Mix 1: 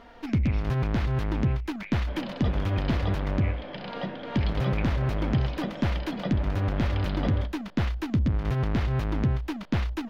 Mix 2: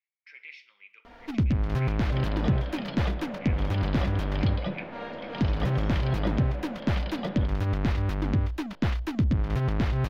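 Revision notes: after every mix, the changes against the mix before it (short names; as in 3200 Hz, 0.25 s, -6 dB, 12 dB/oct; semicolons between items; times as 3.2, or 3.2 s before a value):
first sound: entry +1.05 s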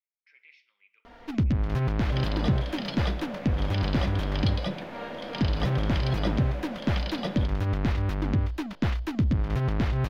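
speech -10.5 dB; second sound: remove air absorption 250 m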